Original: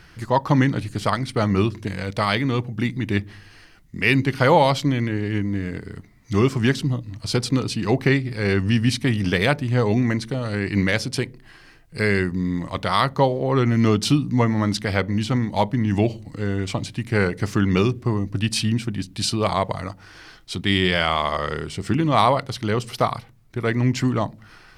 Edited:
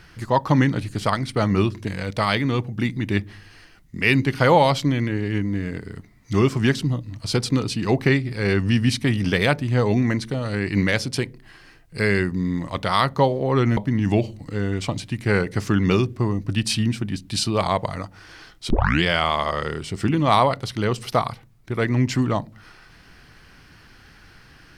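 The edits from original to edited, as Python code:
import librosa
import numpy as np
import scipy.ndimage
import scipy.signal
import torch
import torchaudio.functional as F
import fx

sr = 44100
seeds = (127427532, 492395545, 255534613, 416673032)

y = fx.edit(x, sr, fx.cut(start_s=13.77, length_s=1.86),
    fx.tape_start(start_s=20.56, length_s=0.33), tone=tone)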